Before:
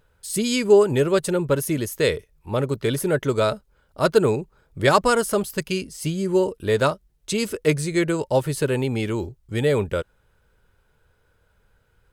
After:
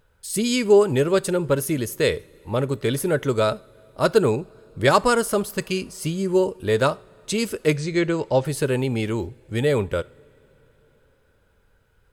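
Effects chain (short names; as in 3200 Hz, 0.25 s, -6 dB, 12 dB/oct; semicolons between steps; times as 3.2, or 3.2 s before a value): 7.75–8.45 LPF 6500 Hz 24 dB/oct; two-slope reverb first 0.43 s, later 4.8 s, from -20 dB, DRR 18.5 dB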